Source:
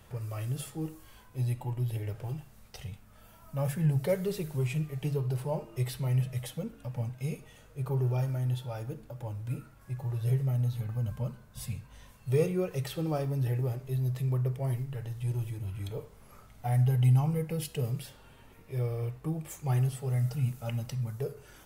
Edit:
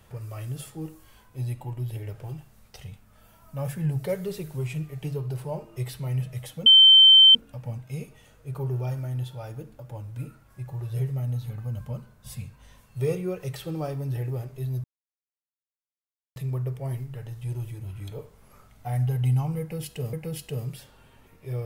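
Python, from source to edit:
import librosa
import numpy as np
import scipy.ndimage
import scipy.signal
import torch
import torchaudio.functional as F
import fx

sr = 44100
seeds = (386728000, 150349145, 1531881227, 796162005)

y = fx.edit(x, sr, fx.insert_tone(at_s=6.66, length_s=0.69, hz=3100.0, db=-9.5),
    fx.insert_silence(at_s=14.15, length_s=1.52),
    fx.repeat(start_s=17.39, length_s=0.53, count=2), tone=tone)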